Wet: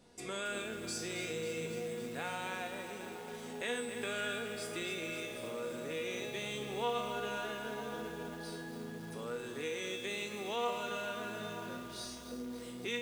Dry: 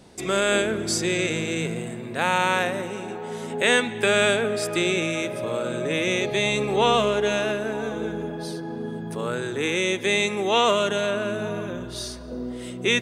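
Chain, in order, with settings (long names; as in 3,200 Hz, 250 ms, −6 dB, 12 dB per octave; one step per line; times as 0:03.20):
mains-hum notches 60/120/180/240 Hz
tuned comb filter 240 Hz, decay 0.66 s, harmonics all, mix 90%
downward compressor 2 to 1, threshold −44 dBFS, peak gain reduction 11 dB
feedback echo at a low word length 273 ms, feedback 80%, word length 9 bits, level −9 dB
level +4 dB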